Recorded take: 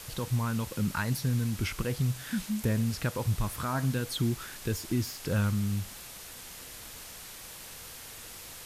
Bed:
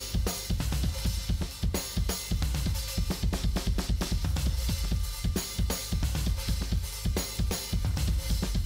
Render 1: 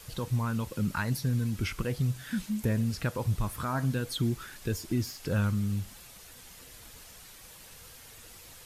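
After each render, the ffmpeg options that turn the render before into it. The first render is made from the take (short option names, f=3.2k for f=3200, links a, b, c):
-af "afftdn=nr=7:nf=-46"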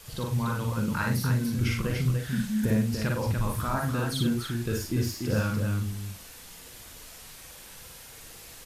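-filter_complex "[0:a]asplit=2[a][b];[b]adelay=42,volume=-6.5dB[c];[a][c]amix=inputs=2:normalize=0,aecho=1:1:55.39|291.5:0.794|0.562"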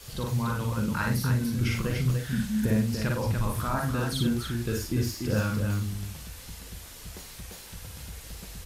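-filter_complex "[1:a]volume=-14.5dB[a];[0:a][a]amix=inputs=2:normalize=0"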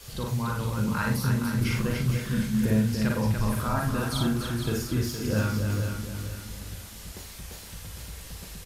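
-filter_complex "[0:a]asplit=2[a][b];[b]adelay=37,volume=-12dB[c];[a][c]amix=inputs=2:normalize=0,aecho=1:1:466|932|1398|1864:0.398|0.139|0.0488|0.0171"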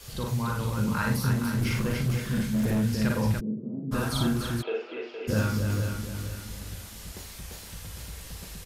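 -filter_complex "[0:a]asettb=1/sr,asplit=3[a][b][c];[a]atrim=end=1.334[d];[b]atrim=start=1.33:end=2.83,asetpts=PTS-STARTPTS,afade=t=in:d=0.004:c=qsin,afade=t=out:st=1.496:d=0.004:c=qsin,asoftclip=type=hard:threshold=-21.5dB[e];[c]atrim=start=2.826[f];[d][e]acrossfade=d=0.004:c1=hsin:c2=qsin[g];[g][f]acrossfade=d=0.004:c1=qsin:c2=hsin,asplit=3[h][i][j];[h]afade=t=out:st=3.39:d=0.02[k];[i]asuperpass=centerf=260:order=8:qfactor=0.92,afade=t=in:st=3.39:d=0.02,afade=t=out:st=3.91:d=0.02[l];[j]afade=t=in:st=3.91:d=0.02[m];[k][l][m]amix=inputs=3:normalize=0,asplit=3[n][o][p];[n]afade=t=out:st=4.61:d=0.02[q];[o]highpass=f=420:w=0.5412,highpass=f=420:w=1.3066,equalizer=f=460:t=q:w=4:g=7,equalizer=f=700:t=q:w=4:g=5,equalizer=f=1.1k:t=q:w=4:g=-5,equalizer=f=1.7k:t=q:w=4:g=-7,equalizer=f=2.7k:t=q:w=4:g=8,lowpass=f=2.8k:w=0.5412,lowpass=f=2.8k:w=1.3066,afade=t=in:st=4.61:d=0.02,afade=t=out:st=5.27:d=0.02[r];[p]afade=t=in:st=5.27:d=0.02[s];[q][r][s]amix=inputs=3:normalize=0"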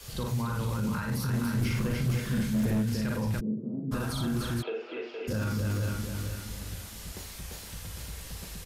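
-filter_complex "[0:a]alimiter=limit=-22.5dB:level=0:latency=1:release=10,acrossover=split=310[a][b];[b]acompressor=threshold=-34dB:ratio=4[c];[a][c]amix=inputs=2:normalize=0"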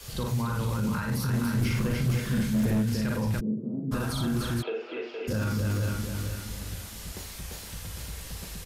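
-af "volume=2dB"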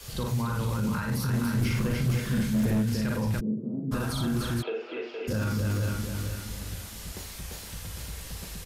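-af anull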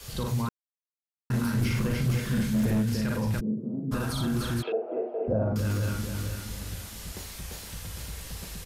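-filter_complex "[0:a]asettb=1/sr,asplit=3[a][b][c];[a]atrim=end=4.724[d];[b]atrim=start=4.72:end=5.56,asetpts=PTS-STARTPTS,afade=t=in:d=0.004:c=qsin,afade=t=out:st=0.836:d=0.004:c=qsin,lowpass=f=670:t=q:w=6.5[e];[c]atrim=start=5.556[f];[d][e]acrossfade=d=0.004:c1=hsin:c2=qsin[g];[g][f]acrossfade=d=0.004:c1=qsin:c2=hsin,asplit=3[h][i][j];[h]atrim=end=0.49,asetpts=PTS-STARTPTS,afade=t=out:st=0.486:d=0.004:c=hsin[k];[i]atrim=start=0.49:end=1.3,asetpts=PTS-STARTPTS,volume=0[l];[j]atrim=start=1.3,asetpts=PTS-STARTPTS,afade=t=in:d=0.004:c=hsin[m];[k][l][m]concat=n=3:v=0:a=1"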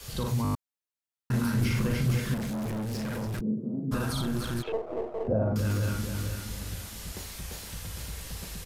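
-filter_complex "[0:a]asettb=1/sr,asplit=3[a][b][c];[a]atrim=end=2.344[d];[b]atrim=start=2.34:end=3.42,asetpts=PTS-STARTPTS,afade=t=in:d=0.004:c=qsin,afade=t=out:st=1.076:d=0.004:c=qsin,asoftclip=type=hard:threshold=-30.5dB[e];[c]atrim=start=3.416[f];[d][e]acrossfade=d=0.004:c1=hsin:c2=qsin[g];[g][f]acrossfade=d=0.004:c1=qsin:c2=hsin,asettb=1/sr,asplit=3[h][i][j];[h]atrim=end=4.214[k];[i]atrim=start=4.21:end=5.28,asetpts=PTS-STARTPTS,afade=t=in:d=0.004:c=qsin,afade=t=out:st=1.066:d=0.004:c=qsin,aeval=exprs='if(lt(val(0),0),0.447*val(0),val(0))':c=same[l];[j]atrim=start=5.276[m];[k][l]acrossfade=d=0.004:c1=hsin:c2=qsin[n];[n][m]acrossfade=d=0.004:c1=qsin:c2=hsin,asplit=7[o][p][q][r][s][t][u];[o]atrim=end=0.452[v];[p]atrim=start=0.428:end=0.452[w];[q]atrim=start=0.428:end=0.452[x];[r]atrim=start=0.428:end=0.452[y];[s]atrim=start=0.428:end=0.452[z];[t]atrim=start=0.428:end=0.452[aa];[u]atrim=start=0.548[ab];[v][w]acrossfade=d=0.004:c1=hsin:c2=hsin[ac];[ac][x]acrossfade=d=0.004:c1=hsin:c2=hsin[ad];[ad][y]acrossfade=d=0.004:c1=hsin:c2=hsin[ae];[ae][z]acrossfade=d=0.004:c1=hsin:c2=hsin[af];[af][aa]acrossfade=d=0.004:c1=hsin:c2=hsin[ag];[ag][ab]acrossfade=d=0.004:c1=hsin:c2=hsin"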